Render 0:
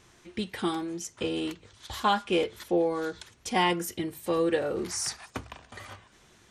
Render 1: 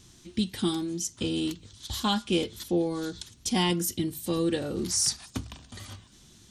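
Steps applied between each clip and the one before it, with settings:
flat-topped bell 1,000 Hz −12.5 dB 3 octaves
level +6.5 dB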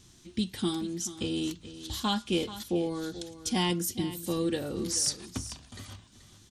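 single-tap delay 432 ms −14 dB
level −2.5 dB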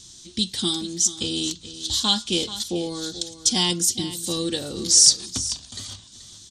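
flat-topped bell 5,400 Hz +13.5 dB
level +2 dB

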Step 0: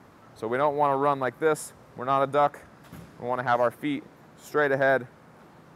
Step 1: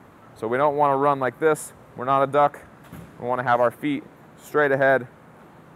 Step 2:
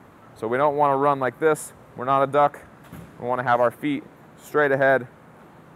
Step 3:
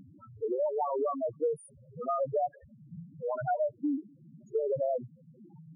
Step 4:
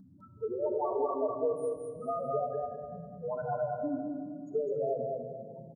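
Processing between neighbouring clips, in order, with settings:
parametric band 5,100 Hz −9 dB 0.62 octaves; level +4 dB
no processing that can be heard
upward compression, threshold −37 dBFS; spectral peaks only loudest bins 2; downward compressor 4 to 1, threshold −28 dBFS, peak gain reduction 9.5 dB
Butterworth band-reject 2,400 Hz, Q 1.2; repeating echo 204 ms, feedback 29%, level −3 dB; rectangular room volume 2,800 cubic metres, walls mixed, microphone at 1.5 metres; level −4.5 dB

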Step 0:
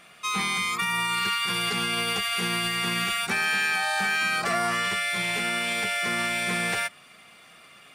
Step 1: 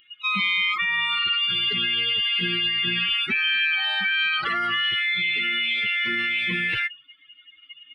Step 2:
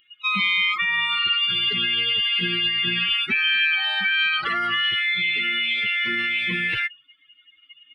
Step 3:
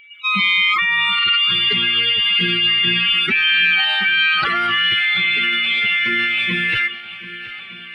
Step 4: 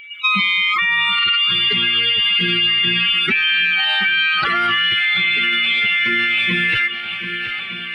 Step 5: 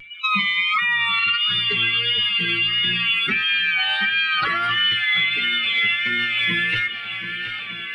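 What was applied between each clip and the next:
spectral dynamics exaggerated over time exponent 3; drawn EQ curve 370 Hz 0 dB, 660 Hz −18 dB, 1,200 Hz −2 dB, 3,200 Hz +11 dB, 6,300 Hz −27 dB; envelope flattener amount 70%
expander for the loud parts 1.5 to 1, over −34 dBFS; level +2.5 dB
transient designer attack −2 dB, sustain +8 dB; steady tone 2,300 Hz −48 dBFS; feedback echo with a long and a short gap by turns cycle 1,213 ms, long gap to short 1.5 to 1, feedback 54%, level −17 dB; level +5 dB
downward compressor, threshold −22 dBFS, peak gain reduction 9.5 dB; level +7.5 dB
pitch vibrato 1.5 Hz 38 cents; convolution reverb RT60 0.20 s, pre-delay 4 ms, DRR 7 dB; level −4 dB

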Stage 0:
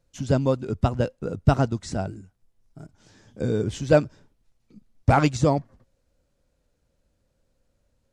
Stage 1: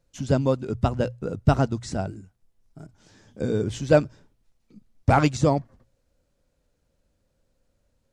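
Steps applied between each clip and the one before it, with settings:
mains-hum notches 60/120 Hz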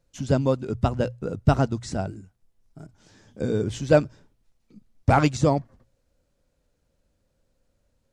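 no processing that can be heard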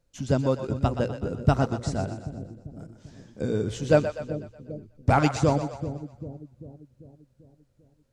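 echo with a time of its own for lows and highs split 490 Hz, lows 393 ms, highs 123 ms, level −9.5 dB
level −2 dB

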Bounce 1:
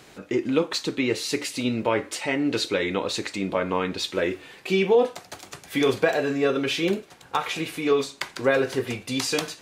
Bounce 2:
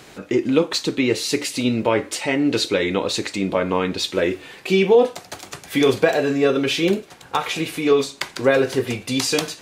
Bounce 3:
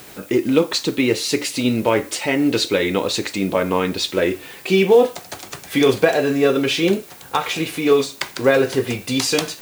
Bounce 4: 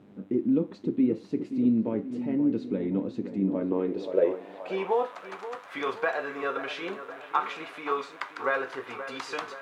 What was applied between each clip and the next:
dynamic equaliser 1,400 Hz, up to −3 dB, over −38 dBFS, Q 0.74; level +5.5 dB
background noise blue −46 dBFS; in parallel at −9.5 dB: floating-point word with a short mantissa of 2 bits; on the sum: level −1 dB
hum with harmonics 100 Hz, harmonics 40, −44 dBFS −1 dB per octave; delay with a low-pass on its return 527 ms, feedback 55%, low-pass 2,200 Hz, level −11 dB; band-pass filter sweep 220 Hz → 1,200 Hz, 0:03.38–0:05.10; level −2 dB

